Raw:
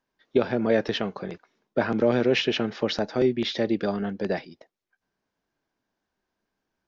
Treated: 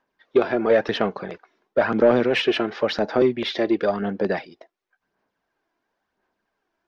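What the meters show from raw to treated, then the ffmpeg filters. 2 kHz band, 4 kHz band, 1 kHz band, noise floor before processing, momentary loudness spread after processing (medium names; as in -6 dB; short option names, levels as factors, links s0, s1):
+4.5 dB, +1.5 dB, +6.0 dB, -83 dBFS, 9 LU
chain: -filter_complex "[0:a]aphaser=in_gain=1:out_gain=1:delay=3:decay=0.41:speed=0.96:type=sinusoidal,asplit=2[s0][s1];[s1]highpass=f=720:p=1,volume=5.01,asoftclip=type=tanh:threshold=0.562[s2];[s0][s2]amix=inputs=2:normalize=0,lowpass=f=1500:p=1,volume=0.501"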